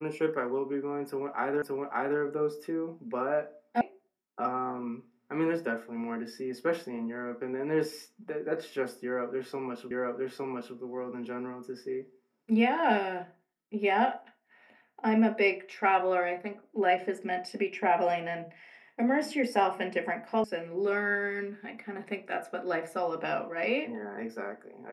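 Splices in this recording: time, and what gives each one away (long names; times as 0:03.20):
0:01.62: the same again, the last 0.57 s
0:03.81: cut off before it has died away
0:09.91: the same again, the last 0.86 s
0:20.44: cut off before it has died away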